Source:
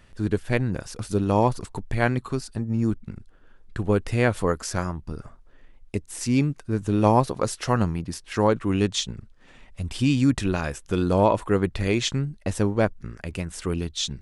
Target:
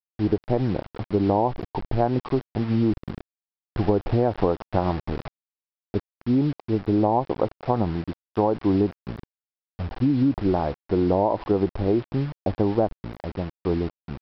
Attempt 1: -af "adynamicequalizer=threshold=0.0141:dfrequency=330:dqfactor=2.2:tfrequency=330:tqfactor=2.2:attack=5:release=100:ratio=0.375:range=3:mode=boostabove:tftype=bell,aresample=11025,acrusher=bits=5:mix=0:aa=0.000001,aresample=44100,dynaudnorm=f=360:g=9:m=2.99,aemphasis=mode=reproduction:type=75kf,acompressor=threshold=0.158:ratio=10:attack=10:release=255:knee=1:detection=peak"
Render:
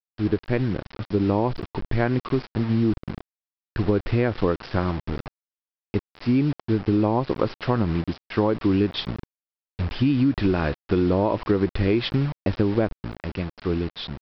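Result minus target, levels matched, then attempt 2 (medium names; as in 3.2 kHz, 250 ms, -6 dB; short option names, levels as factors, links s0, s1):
1 kHz band -4.0 dB
-af "adynamicequalizer=threshold=0.0141:dfrequency=330:dqfactor=2.2:tfrequency=330:tqfactor=2.2:attack=5:release=100:ratio=0.375:range=3:mode=boostabove:tftype=bell,lowpass=f=800:t=q:w=3.4,aresample=11025,acrusher=bits=5:mix=0:aa=0.000001,aresample=44100,dynaudnorm=f=360:g=9:m=2.99,aemphasis=mode=reproduction:type=75kf,acompressor=threshold=0.158:ratio=10:attack=10:release=255:knee=1:detection=peak"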